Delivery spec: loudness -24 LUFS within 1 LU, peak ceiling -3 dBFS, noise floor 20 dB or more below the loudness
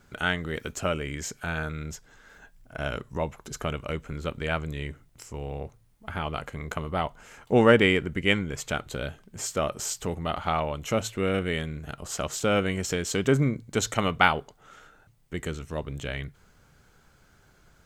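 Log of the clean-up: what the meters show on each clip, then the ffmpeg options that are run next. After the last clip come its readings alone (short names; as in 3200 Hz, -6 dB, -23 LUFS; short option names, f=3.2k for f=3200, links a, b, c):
loudness -28.0 LUFS; peak -2.5 dBFS; loudness target -24.0 LUFS
-> -af "volume=4dB,alimiter=limit=-3dB:level=0:latency=1"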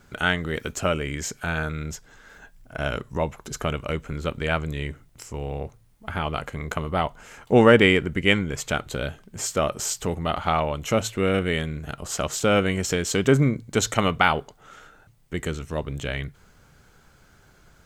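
loudness -24.5 LUFS; peak -3.0 dBFS; noise floor -56 dBFS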